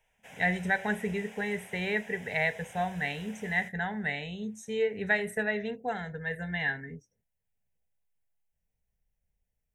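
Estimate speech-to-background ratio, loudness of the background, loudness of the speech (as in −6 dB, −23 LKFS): 18.0 dB, −49.5 LKFS, −31.5 LKFS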